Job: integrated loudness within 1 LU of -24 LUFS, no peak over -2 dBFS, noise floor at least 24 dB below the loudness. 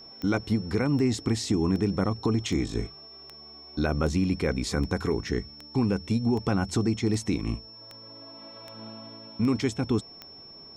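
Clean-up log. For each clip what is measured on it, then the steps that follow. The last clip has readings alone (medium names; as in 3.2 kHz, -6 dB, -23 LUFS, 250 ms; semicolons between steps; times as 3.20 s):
clicks found 14; steady tone 5.4 kHz; tone level -45 dBFS; loudness -27.5 LUFS; peak level -14.0 dBFS; loudness target -24.0 LUFS
-> de-click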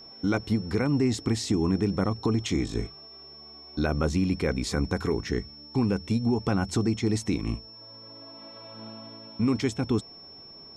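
clicks found 0; steady tone 5.4 kHz; tone level -45 dBFS
-> band-stop 5.4 kHz, Q 30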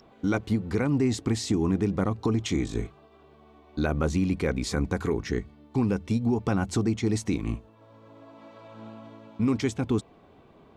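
steady tone not found; loudness -27.5 LUFS; peak level -15.5 dBFS; loudness target -24.0 LUFS
-> trim +3.5 dB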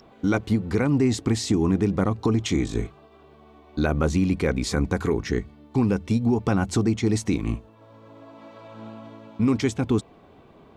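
loudness -24.0 LUFS; peak level -12.0 dBFS; noise floor -52 dBFS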